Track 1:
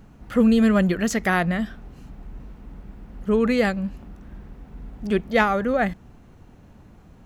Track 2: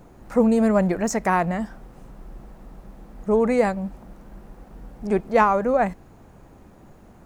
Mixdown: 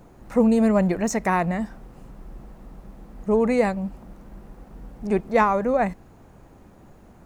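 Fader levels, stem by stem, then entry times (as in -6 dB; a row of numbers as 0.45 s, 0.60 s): -16.0 dB, -1.0 dB; 0.00 s, 0.00 s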